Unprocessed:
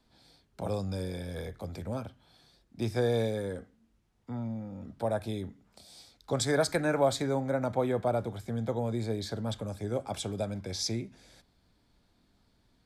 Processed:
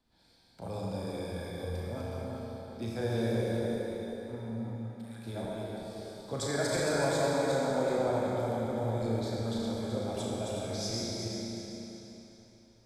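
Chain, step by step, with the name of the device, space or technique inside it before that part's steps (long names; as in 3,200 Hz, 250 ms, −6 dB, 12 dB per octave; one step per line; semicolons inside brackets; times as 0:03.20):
feedback delay that plays each chunk backwards 188 ms, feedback 61%, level −3 dB
0:04.73–0:05.26: inverse Chebyshev high-pass filter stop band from 410 Hz, stop band 70 dB
tunnel (flutter between parallel walls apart 6 metres, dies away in 0.33 s; convolution reverb RT60 3.4 s, pre-delay 34 ms, DRR −1.5 dB)
level −7.5 dB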